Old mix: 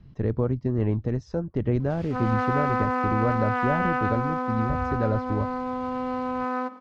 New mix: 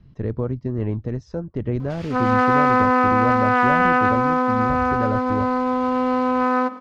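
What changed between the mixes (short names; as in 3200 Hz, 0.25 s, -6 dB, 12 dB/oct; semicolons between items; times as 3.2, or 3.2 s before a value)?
background +9.0 dB; master: add notch 790 Hz, Q 17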